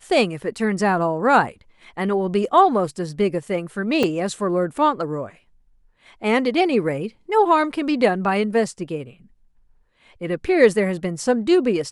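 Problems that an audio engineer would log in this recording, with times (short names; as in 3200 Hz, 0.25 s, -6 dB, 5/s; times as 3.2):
4.03 gap 4.5 ms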